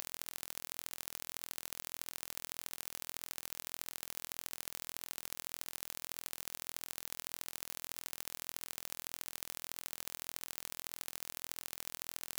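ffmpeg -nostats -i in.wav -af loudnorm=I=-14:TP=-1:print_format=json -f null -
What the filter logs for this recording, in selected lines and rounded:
"input_i" : "-42.7",
"input_tp" : "-12.4",
"input_lra" : "0.1",
"input_thresh" : "-52.7",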